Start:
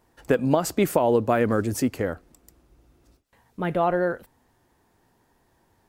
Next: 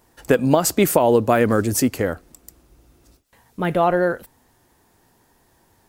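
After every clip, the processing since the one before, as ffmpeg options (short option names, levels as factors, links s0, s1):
-af "highshelf=f=4400:g=7.5,volume=1.68"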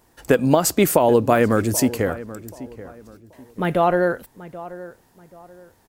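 -filter_complex "[0:a]asplit=2[s0][s1];[s1]adelay=782,lowpass=f=1800:p=1,volume=0.158,asplit=2[s2][s3];[s3]adelay=782,lowpass=f=1800:p=1,volume=0.32,asplit=2[s4][s5];[s5]adelay=782,lowpass=f=1800:p=1,volume=0.32[s6];[s0][s2][s4][s6]amix=inputs=4:normalize=0"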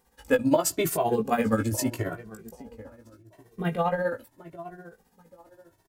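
-filter_complex "[0:a]tremolo=f=15:d=0.73,asplit=2[s0][s1];[s1]adelay=18,volume=0.531[s2];[s0][s2]amix=inputs=2:normalize=0,asplit=2[s3][s4];[s4]adelay=2.1,afreqshift=0.8[s5];[s3][s5]amix=inputs=2:normalize=1,volume=0.75"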